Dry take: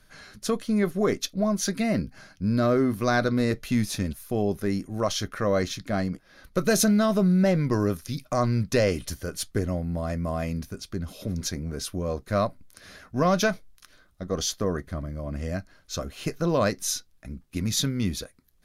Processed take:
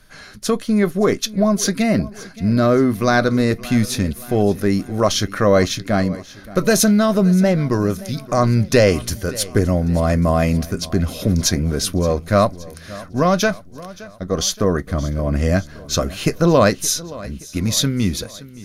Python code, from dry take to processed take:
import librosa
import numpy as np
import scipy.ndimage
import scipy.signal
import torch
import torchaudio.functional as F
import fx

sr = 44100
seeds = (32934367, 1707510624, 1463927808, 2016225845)

y = fx.rider(x, sr, range_db=10, speed_s=2.0)
y = fx.echo_feedback(y, sr, ms=572, feedback_pct=51, wet_db=-19)
y = F.gain(torch.from_numpy(y), 8.0).numpy()